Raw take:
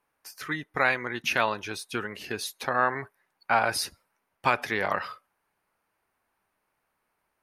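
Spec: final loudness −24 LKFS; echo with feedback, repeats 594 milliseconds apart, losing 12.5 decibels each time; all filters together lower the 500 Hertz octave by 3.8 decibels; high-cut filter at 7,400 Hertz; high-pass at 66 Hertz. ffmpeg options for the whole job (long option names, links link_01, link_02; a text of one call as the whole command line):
ffmpeg -i in.wav -af "highpass=66,lowpass=7400,equalizer=frequency=500:width_type=o:gain=-5,aecho=1:1:594|1188|1782:0.237|0.0569|0.0137,volume=5.5dB" out.wav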